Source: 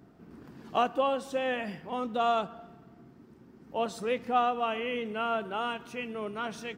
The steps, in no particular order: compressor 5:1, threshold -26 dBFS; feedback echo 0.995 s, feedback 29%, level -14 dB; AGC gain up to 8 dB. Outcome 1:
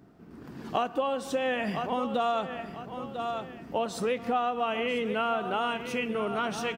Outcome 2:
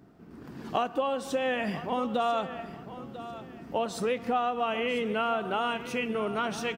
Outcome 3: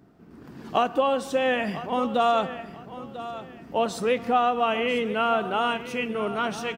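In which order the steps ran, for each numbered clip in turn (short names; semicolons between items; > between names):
AGC > feedback echo > compressor; AGC > compressor > feedback echo; compressor > AGC > feedback echo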